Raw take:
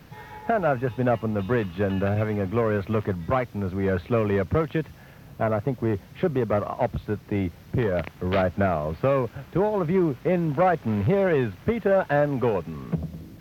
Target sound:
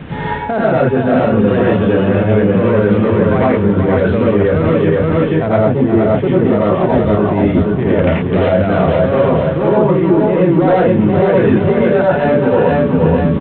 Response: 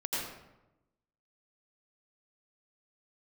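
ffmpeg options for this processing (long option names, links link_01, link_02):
-filter_complex "[0:a]bandreject=frequency=59.68:width_type=h:width=4,bandreject=frequency=119.36:width_type=h:width=4,bandreject=frequency=179.04:width_type=h:width=4,bandreject=frequency=238.72:width_type=h:width=4,aresample=8000,volume=16dB,asoftclip=hard,volume=-16dB,aresample=44100,aecho=1:1:474|948|1422|1896:0.562|0.163|0.0473|0.0137,areverse,acompressor=threshold=-34dB:ratio=6,areverse,equalizer=frequency=190:width_type=o:width=2.7:gain=5.5[link_01];[1:a]atrim=start_sample=2205,afade=type=out:start_time=0.19:duration=0.01,atrim=end_sample=8820[link_02];[link_01][link_02]afir=irnorm=-1:irlink=0,alimiter=level_in=19dB:limit=-1dB:release=50:level=0:latency=1,volume=-1dB"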